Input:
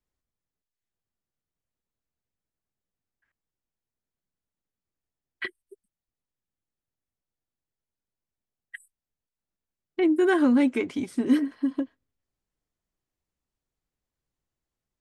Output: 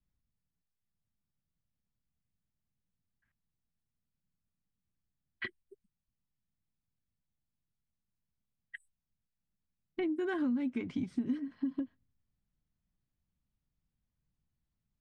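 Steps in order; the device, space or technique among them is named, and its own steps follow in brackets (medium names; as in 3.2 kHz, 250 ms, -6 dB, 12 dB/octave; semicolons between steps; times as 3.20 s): jukebox (low-pass 5.1 kHz 12 dB/octave; resonant low shelf 270 Hz +10.5 dB, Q 1.5; compression 5:1, threshold -26 dBFS, peak gain reduction 15 dB); trim -5.5 dB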